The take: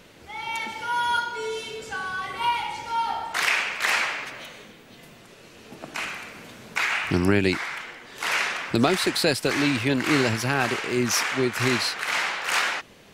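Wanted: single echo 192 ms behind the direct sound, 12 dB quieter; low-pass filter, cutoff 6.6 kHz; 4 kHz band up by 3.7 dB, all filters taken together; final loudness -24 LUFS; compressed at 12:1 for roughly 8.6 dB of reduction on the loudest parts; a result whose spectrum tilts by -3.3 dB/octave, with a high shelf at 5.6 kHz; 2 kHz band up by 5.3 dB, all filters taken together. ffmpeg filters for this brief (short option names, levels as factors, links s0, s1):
-af "lowpass=6600,equalizer=f=2000:t=o:g=6,equalizer=f=4000:t=o:g=5,highshelf=f=5600:g=-5,acompressor=threshold=0.0708:ratio=12,aecho=1:1:192:0.251,volume=1.41"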